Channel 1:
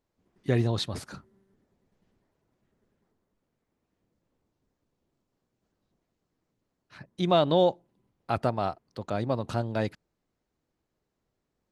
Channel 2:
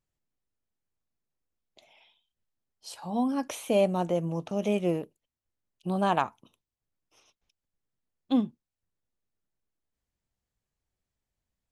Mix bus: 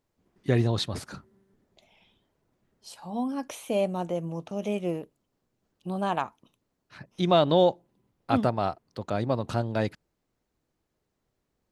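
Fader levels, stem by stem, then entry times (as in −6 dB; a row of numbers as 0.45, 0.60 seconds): +1.5, −2.5 decibels; 0.00, 0.00 seconds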